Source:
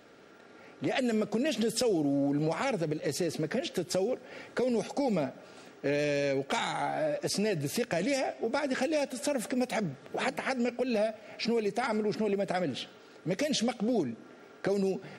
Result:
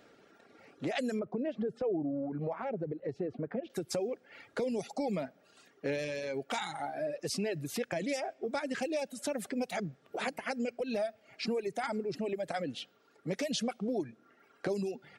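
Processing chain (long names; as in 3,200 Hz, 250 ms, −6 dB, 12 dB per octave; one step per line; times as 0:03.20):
reverb reduction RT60 1.5 s
0:01.19–0:03.70: low-pass filter 1,200 Hz 12 dB per octave
level −3.5 dB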